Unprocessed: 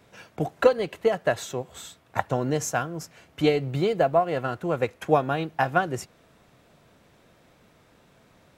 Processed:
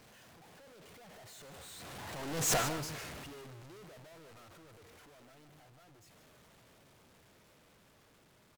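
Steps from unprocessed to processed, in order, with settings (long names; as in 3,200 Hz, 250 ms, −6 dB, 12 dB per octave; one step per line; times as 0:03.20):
sign of each sample alone
source passing by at 0:02.52, 25 m/s, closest 1.6 metres
on a send: single-tap delay 150 ms −11.5 dB
on the sum: highs frequency-modulated by the lows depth 0.23 ms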